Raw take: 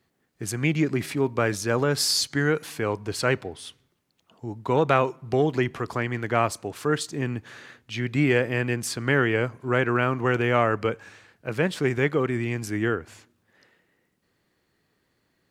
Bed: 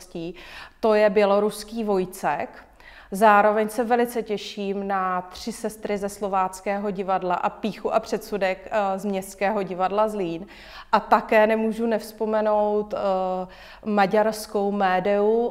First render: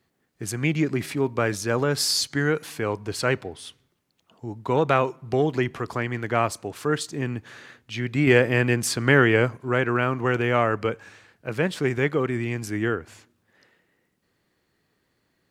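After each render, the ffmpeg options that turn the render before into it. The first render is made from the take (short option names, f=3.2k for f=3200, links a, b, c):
-filter_complex "[0:a]asplit=3[a][b][c];[a]atrim=end=8.272[d];[b]atrim=start=8.268:end=9.572,asetpts=PTS-STARTPTS,volume=4.5dB[e];[c]atrim=start=9.568[f];[d][e]acrossfade=d=0.004:c1=hsin:c2=hsin[g];[g][f]acrossfade=d=0.004:c1=hsin:c2=hsin"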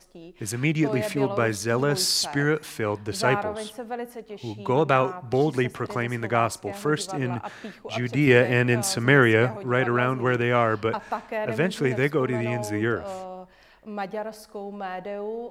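-filter_complex "[1:a]volume=-12dB[a];[0:a][a]amix=inputs=2:normalize=0"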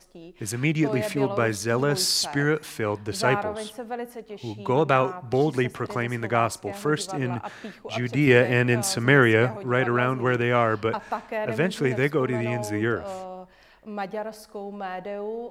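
-af anull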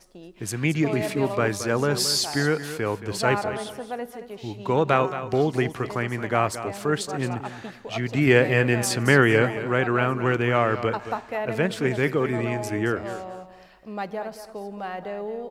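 -af "aecho=1:1:223|446|669:0.251|0.0553|0.0122"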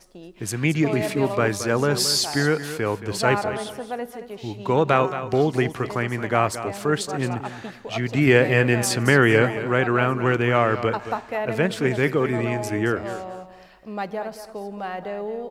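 -af "volume=2dB,alimiter=limit=-3dB:level=0:latency=1"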